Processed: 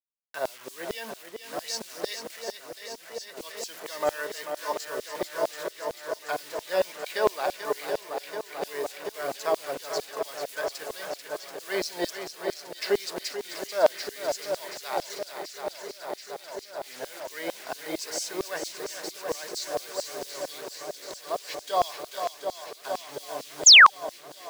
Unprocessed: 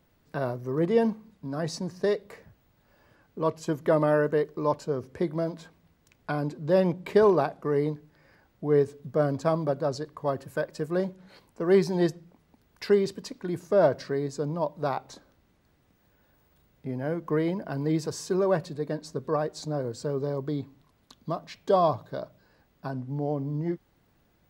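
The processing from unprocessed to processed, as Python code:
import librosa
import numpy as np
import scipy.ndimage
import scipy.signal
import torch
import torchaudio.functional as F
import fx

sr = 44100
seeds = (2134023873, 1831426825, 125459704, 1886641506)

y = fx.peak_eq(x, sr, hz=1200.0, db=-8.5, octaves=1.0)
y = fx.quant_dither(y, sr, seeds[0], bits=8, dither='none')
y = fx.echo_swing(y, sr, ms=732, ratio=1.5, feedback_pct=76, wet_db=-8.0)
y = fx.spec_paint(y, sr, seeds[1], shape='fall', start_s=23.66, length_s=0.24, low_hz=720.0, high_hz=7500.0, level_db=-17.0)
y = fx.filter_lfo_highpass(y, sr, shape='saw_down', hz=4.4, low_hz=600.0, high_hz=4900.0, q=1.1)
y = y * 10.0 ** (5.5 / 20.0)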